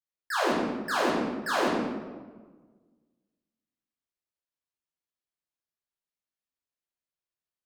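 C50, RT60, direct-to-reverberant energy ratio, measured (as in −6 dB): −0.5 dB, 1.4 s, −8.0 dB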